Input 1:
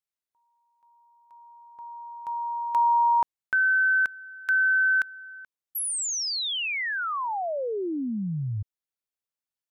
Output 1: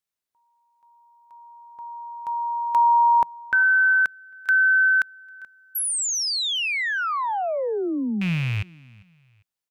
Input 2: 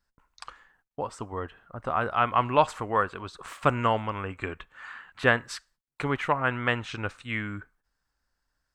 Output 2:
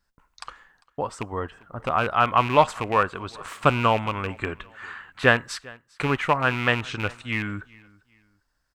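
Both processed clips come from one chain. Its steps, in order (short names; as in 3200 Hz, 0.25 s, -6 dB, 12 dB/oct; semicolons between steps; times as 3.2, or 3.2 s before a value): rattling part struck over -31 dBFS, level -24 dBFS; bell 170 Hz +2.5 dB 0.22 oct; feedback echo 0.399 s, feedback 32%, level -24 dB; gain +4 dB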